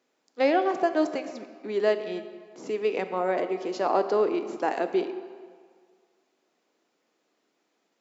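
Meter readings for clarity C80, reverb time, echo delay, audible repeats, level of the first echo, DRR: 11.5 dB, 1.9 s, no echo, no echo, no echo, 8.5 dB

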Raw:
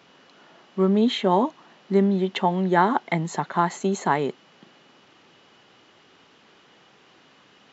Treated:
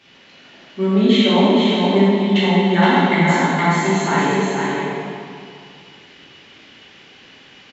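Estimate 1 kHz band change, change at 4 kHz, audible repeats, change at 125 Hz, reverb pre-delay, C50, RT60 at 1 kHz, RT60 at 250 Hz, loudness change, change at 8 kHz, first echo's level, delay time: +4.5 dB, +12.0 dB, 1, +8.5 dB, 3 ms, -5.5 dB, 2.4 s, 2.4 s, +7.0 dB, no reading, -4.0 dB, 468 ms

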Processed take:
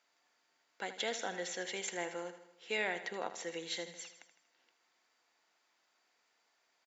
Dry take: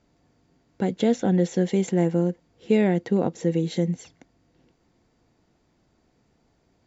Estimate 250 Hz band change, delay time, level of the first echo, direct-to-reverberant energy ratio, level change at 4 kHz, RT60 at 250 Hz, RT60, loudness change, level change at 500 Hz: -27.0 dB, 79 ms, -12.0 dB, no reverb, -0.5 dB, no reverb, no reverb, -15.5 dB, -16.5 dB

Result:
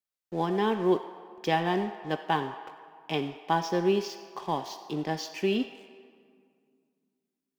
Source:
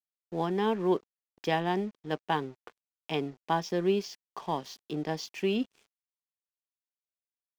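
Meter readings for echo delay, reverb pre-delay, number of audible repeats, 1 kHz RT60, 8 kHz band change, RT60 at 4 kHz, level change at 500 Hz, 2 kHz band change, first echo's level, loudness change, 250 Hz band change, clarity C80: no echo, 4 ms, no echo, 2.1 s, no reading, 1.2 s, +2.0 dB, +3.0 dB, no echo, +2.0 dB, +2.0 dB, 10.0 dB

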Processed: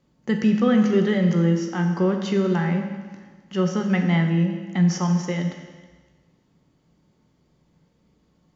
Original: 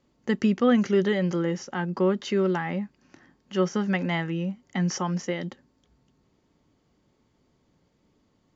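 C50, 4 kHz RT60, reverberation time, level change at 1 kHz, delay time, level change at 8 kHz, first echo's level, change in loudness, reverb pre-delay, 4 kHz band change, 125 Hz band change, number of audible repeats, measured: 6.0 dB, 1.4 s, 1.4 s, +1.0 dB, no echo, no reading, no echo, +4.5 dB, 15 ms, +1.5 dB, +8.0 dB, no echo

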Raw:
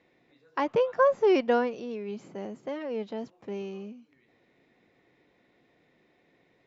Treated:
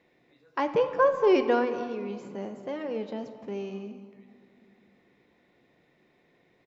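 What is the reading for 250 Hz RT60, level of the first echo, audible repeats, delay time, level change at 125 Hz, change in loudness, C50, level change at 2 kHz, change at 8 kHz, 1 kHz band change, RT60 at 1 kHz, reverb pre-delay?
3.1 s, -18.0 dB, 1, 225 ms, no reading, +0.5 dB, 9.5 dB, +0.5 dB, no reading, +1.0 dB, 2.3 s, 5 ms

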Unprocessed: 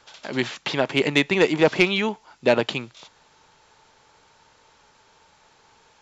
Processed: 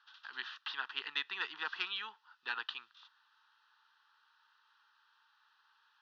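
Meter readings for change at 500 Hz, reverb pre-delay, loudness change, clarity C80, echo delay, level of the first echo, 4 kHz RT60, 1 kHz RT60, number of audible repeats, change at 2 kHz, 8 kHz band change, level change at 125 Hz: -39.0 dB, no reverb, -18.0 dB, no reverb, no echo, no echo, no reverb, no reverb, no echo, -14.0 dB, no reading, under -40 dB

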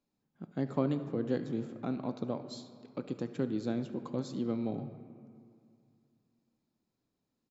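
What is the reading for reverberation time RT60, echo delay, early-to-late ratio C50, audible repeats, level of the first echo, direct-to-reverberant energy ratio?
2.3 s, 73 ms, 10.0 dB, 1, -19.5 dB, 8.5 dB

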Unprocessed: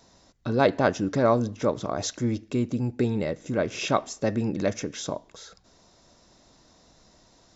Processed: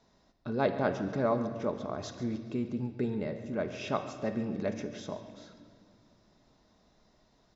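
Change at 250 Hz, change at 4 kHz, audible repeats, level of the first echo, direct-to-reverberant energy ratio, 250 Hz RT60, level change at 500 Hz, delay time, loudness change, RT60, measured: -6.5 dB, -11.0 dB, 2, -16.0 dB, 6.0 dB, 2.9 s, -7.0 dB, 139 ms, -7.0 dB, 2.0 s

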